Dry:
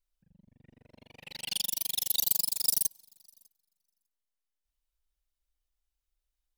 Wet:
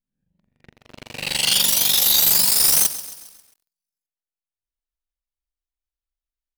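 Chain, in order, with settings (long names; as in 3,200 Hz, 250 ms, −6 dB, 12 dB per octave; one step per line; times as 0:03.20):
peak hold with a rise ahead of every peak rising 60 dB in 0.61 s
high-shelf EQ 4,800 Hz −4 dB
leveller curve on the samples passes 5
feedback echo at a low word length 134 ms, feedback 55%, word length 7 bits, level −14.5 dB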